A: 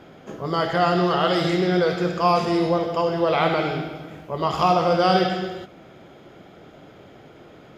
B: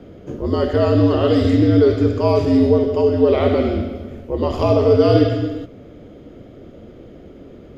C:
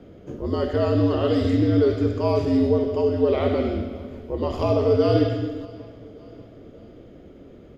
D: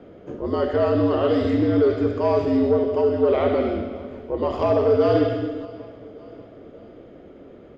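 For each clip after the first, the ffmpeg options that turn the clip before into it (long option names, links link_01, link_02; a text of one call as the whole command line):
ffmpeg -i in.wav -af "lowshelf=frequency=730:width_type=q:width=1.5:gain=9,afreqshift=-72,volume=-3dB" out.wav
ffmpeg -i in.wav -af "aecho=1:1:585|1170|1755:0.0841|0.0387|0.0178,volume=-5.5dB" out.wav
ffmpeg -i in.wav -filter_complex "[0:a]asplit=2[link_01][link_02];[link_02]highpass=frequency=720:poles=1,volume=13dB,asoftclip=type=tanh:threshold=-6.5dB[link_03];[link_01][link_03]amix=inputs=2:normalize=0,lowpass=frequency=1200:poles=1,volume=-6dB" out.wav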